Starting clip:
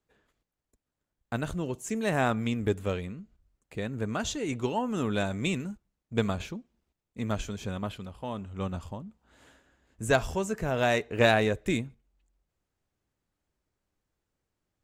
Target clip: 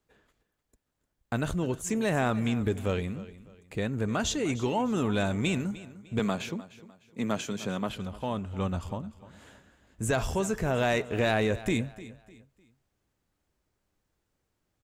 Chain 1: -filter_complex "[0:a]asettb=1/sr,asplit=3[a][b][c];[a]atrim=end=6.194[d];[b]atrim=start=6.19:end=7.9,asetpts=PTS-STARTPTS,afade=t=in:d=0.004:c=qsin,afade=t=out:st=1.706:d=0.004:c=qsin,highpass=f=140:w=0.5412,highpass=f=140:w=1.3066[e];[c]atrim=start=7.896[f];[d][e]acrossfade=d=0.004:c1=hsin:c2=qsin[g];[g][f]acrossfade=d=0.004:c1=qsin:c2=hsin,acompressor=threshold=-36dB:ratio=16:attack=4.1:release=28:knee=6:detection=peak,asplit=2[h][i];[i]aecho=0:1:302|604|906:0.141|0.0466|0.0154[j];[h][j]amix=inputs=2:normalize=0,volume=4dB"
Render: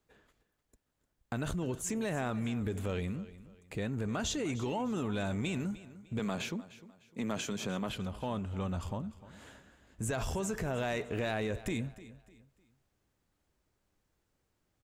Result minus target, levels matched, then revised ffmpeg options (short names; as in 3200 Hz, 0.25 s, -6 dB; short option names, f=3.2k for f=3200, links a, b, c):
compressor: peak gain reduction +8.5 dB
-filter_complex "[0:a]asettb=1/sr,asplit=3[a][b][c];[a]atrim=end=6.194[d];[b]atrim=start=6.19:end=7.9,asetpts=PTS-STARTPTS,afade=t=in:d=0.004:c=qsin,afade=t=out:st=1.706:d=0.004:c=qsin,highpass=f=140:w=0.5412,highpass=f=140:w=1.3066[e];[c]atrim=start=7.896[f];[d][e]acrossfade=d=0.004:c1=hsin:c2=qsin[g];[g][f]acrossfade=d=0.004:c1=qsin:c2=hsin,acompressor=threshold=-27dB:ratio=16:attack=4.1:release=28:knee=6:detection=peak,asplit=2[h][i];[i]aecho=0:1:302|604|906:0.141|0.0466|0.0154[j];[h][j]amix=inputs=2:normalize=0,volume=4dB"